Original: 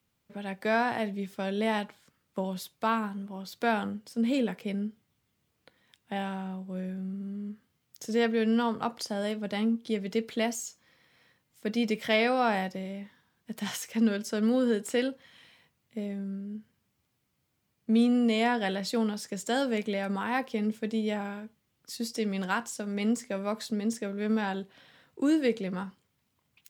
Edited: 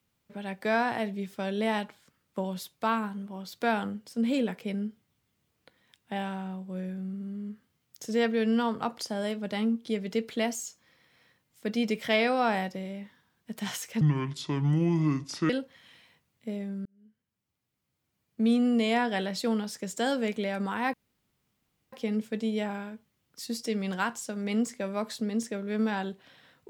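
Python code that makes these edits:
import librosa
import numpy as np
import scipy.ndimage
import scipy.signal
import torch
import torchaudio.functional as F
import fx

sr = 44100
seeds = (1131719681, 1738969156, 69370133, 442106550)

y = fx.edit(x, sr, fx.speed_span(start_s=14.01, length_s=0.98, speed=0.66),
    fx.fade_in_span(start_s=16.35, length_s=1.8),
    fx.insert_room_tone(at_s=20.43, length_s=0.99), tone=tone)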